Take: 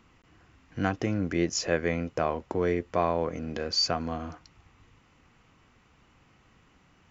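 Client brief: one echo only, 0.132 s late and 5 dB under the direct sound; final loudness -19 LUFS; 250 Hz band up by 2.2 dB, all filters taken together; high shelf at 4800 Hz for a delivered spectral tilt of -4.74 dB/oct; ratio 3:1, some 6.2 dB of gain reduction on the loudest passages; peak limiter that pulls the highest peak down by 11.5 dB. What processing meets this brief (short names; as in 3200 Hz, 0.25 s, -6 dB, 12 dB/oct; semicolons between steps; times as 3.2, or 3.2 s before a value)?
bell 250 Hz +3 dB; high shelf 4800 Hz -4.5 dB; compressor 3:1, threshold -28 dBFS; limiter -27 dBFS; echo 0.132 s -5 dB; gain +17.5 dB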